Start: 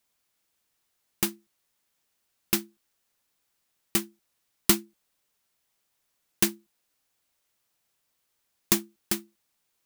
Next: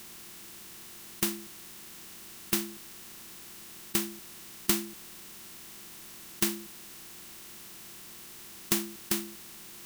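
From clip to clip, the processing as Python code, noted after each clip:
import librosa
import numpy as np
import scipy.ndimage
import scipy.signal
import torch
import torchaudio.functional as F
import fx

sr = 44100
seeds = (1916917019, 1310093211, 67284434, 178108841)

y = fx.bin_compress(x, sr, power=0.4)
y = y * 10.0 ** (-7.5 / 20.0)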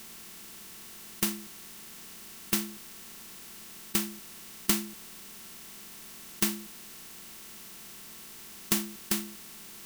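y = x + 0.34 * np.pad(x, (int(4.5 * sr / 1000.0), 0))[:len(x)]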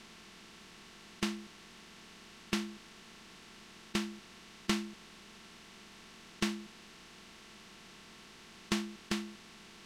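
y = scipy.signal.sosfilt(scipy.signal.butter(2, 4300.0, 'lowpass', fs=sr, output='sos'), x)
y = y * 10.0 ** (-1.5 / 20.0)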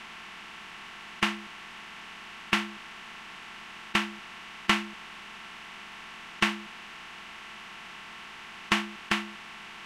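y = fx.band_shelf(x, sr, hz=1500.0, db=11.5, octaves=2.4)
y = y * 10.0 ** (2.0 / 20.0)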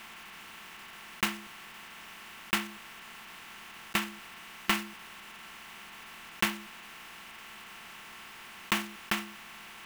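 y = fx.block_float(x, sr, bits=3)
y = y * 10.0 ** (-4.0 / 20.0)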